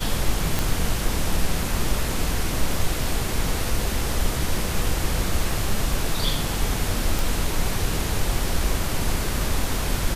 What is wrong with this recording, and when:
0:00.59: click
0:07.19: click

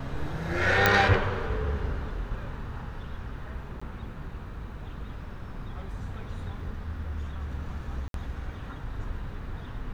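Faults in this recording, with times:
0:00.86: click −5 dBFS
0:03.80–0:03.81: drop-out 15 ms
0:08.08–0:08.14: drop-out 62 ms

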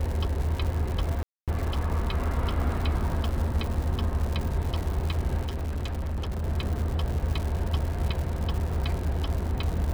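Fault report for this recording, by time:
surface crackle 190 per second −31 dBFS
0:01.23–0:01.48: drop-out 247 ms
0:05.42–0:06.43: clipping −27 dBFS

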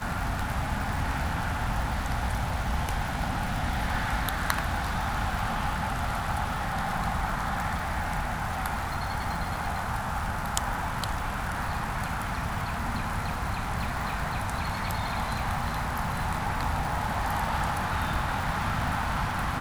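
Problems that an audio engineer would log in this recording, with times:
surface crackle 290 per second −34 dBFS

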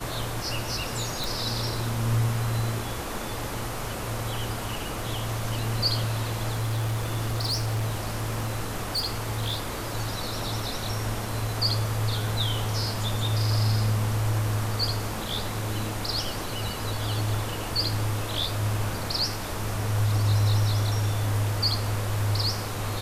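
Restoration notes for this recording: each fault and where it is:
0:01.24: click
0:06.52–0:09.87: clipping −23 dBFS

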